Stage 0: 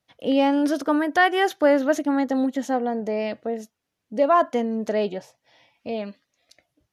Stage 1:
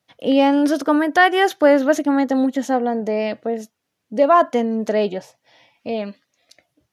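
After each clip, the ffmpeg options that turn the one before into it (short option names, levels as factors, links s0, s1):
-af "highpass=86,volume=1.68"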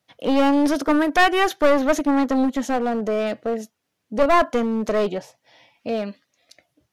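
-af "aeval=exprs='clip(val(0),-1,0.112)':c=same"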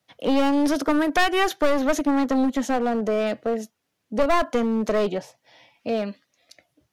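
-filter_complex "[0:a]acrossover=split=180|3000[s0][s1][s2];[s1]acompressor=threshold=0.141:ratio=6[s3];[s0][s3][s2]amix=inputs=3:normalize=0"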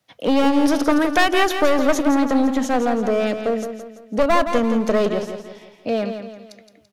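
-af "aecho=1:1:168|336|504|672|840:0.376|0.162|0.0695|0.0299|0.0128,volume=1.41"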